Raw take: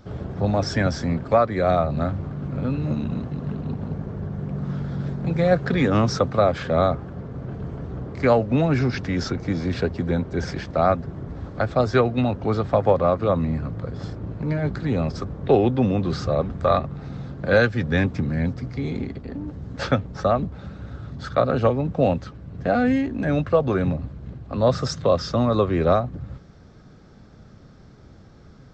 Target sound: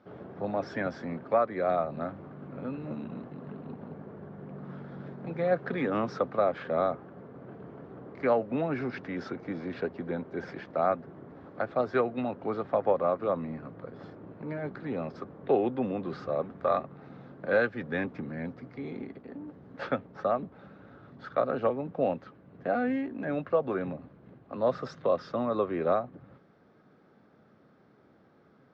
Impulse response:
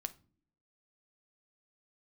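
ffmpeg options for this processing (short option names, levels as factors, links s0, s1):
-af "highpass=250,lowpass=2400,volume=0.447"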